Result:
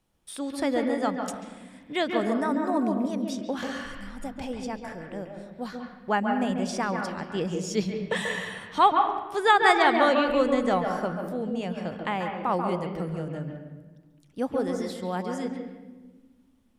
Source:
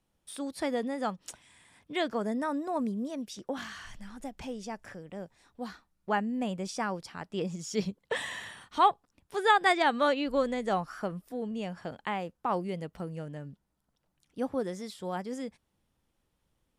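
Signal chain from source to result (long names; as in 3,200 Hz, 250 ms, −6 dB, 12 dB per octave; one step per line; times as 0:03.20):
0:03.81–0:05.69: notch filter 6,300 Hz, Q 7.9
convolution reverb RT60 1.3 s, pre-delay 138 ms, DRR 3 dB
level +3.5 dB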